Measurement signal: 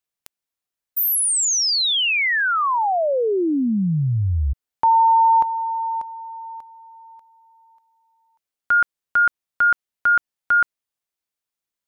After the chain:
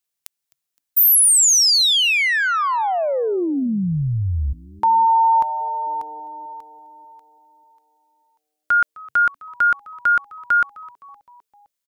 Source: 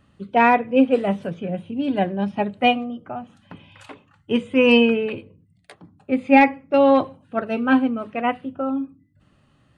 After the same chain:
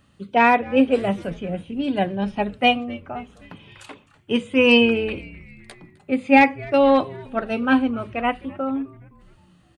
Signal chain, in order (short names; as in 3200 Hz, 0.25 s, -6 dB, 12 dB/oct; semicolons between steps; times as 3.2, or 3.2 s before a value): high shelf 3100 Hz +8 dB; frequency-shifting echo 0.258 s, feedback 56%, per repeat -150 Hz, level -22 dB; gain -1 dB